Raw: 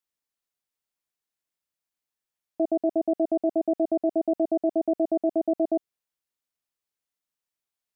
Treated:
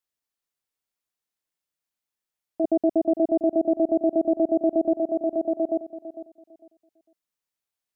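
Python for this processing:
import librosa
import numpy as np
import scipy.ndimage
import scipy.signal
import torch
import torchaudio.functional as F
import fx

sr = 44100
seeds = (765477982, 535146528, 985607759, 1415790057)

y = fx.low_shelf(x, sr, hz=430.0, db=6.5, at=(2.64, 4.93))
y = fx.echo_feedback(y, sr, ms=452, feedback_pct=22, wet_db=-13)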